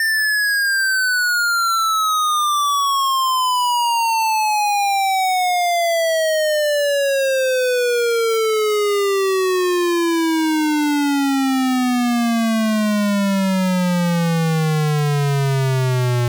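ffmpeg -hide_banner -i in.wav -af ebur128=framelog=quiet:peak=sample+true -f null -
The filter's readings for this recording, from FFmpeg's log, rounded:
Integrated loudness:
  I:         -17.2 LUFS
  Threshold: -27.2 LUFS
Loudness range:
  LRA:         1.6 LU
  Threshold: -37.2 LUFS
  LRA low:   -17.9 LUFS
  LRA high:  -16.3 LUFS
Sample peak:
  Peak:      -17.2 dBFS
True peak:
  Peak:      -16.3 dBFS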